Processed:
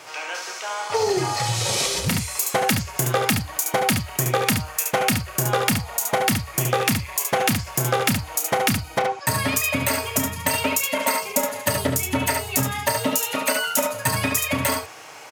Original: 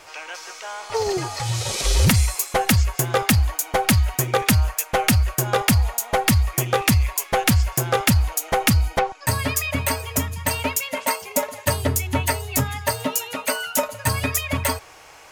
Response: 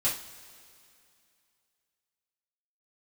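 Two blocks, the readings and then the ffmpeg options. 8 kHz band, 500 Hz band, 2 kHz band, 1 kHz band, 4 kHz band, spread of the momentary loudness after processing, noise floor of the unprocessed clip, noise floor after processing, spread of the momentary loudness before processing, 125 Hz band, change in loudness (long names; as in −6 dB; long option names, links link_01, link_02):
+1.0 dB, +1.0 dB, +0.5 dB, +0.5 dB, +0.5 dB, 3 LU, −44 dBFS, −38 dBFS, 6 LU, −5.5 dB, −1.0 dB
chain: -filter_complex "[0:a]asplit=2[link_01][link_02];[link_02]aecho=0:1:30|71:0.398|0.531[link_03];[link_01][link_03]amix=inputs=2:normalize=0,acompressor=threshold=-20dB:ratio=6,highpass=frequency=110:width=0.5412,highpass=frequency=110:width=1.3066,volume=3dB"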